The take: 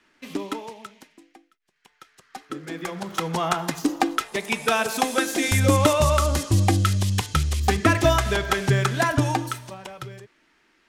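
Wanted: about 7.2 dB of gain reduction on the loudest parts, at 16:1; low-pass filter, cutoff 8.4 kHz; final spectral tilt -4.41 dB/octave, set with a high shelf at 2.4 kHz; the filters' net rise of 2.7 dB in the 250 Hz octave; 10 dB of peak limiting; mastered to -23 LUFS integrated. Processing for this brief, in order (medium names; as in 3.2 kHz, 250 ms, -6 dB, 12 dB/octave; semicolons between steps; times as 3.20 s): low-pass 8.4 kHz; peaking EQ 250 Hz +3.5 dB; treble shelf 2.4 kHz +5.5 dB; compression 16:1, threshold -19 dBFS; trim +4.5 dB; peak limiter -12 dBFS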